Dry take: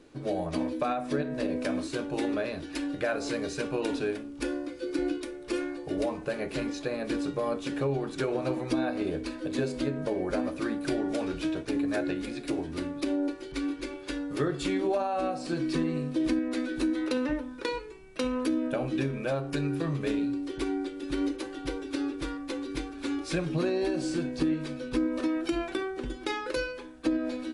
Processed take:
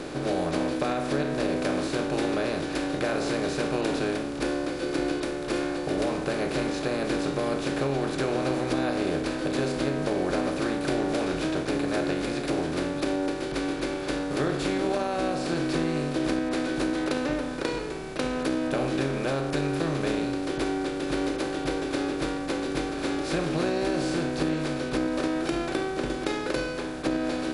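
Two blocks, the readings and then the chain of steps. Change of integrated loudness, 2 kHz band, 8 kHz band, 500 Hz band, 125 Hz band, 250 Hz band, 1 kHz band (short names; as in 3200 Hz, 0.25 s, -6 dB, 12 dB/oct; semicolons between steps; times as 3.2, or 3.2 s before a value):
+3.5 dB, +5.0 dB, +5.5 dB, +4.0 dB, +3.5 dB, +2.0 dB, +5.0 dB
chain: per-bin compression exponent 0.4; short-mantissa float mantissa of 8-bit; gain -3.5 dB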